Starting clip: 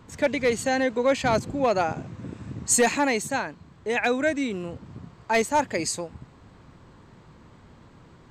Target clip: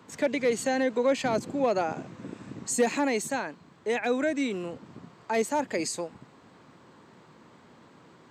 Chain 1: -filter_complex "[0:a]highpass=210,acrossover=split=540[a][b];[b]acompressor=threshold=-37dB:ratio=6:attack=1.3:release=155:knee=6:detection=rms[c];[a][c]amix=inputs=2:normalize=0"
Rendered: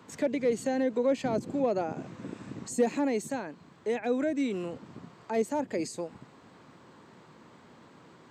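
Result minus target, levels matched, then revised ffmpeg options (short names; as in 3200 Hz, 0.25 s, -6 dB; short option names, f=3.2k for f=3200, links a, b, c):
compressor: peak gain reduction +9 dB
-filter_complex "[0:a]highpass=210,acrossover=split=540[a][b];[b]acompressor=threshold=-26dB:ratio=6:attack=1.3:release=155:knee=6:detection=rms[c];[a][c]amix=inputs=2:normalize=0"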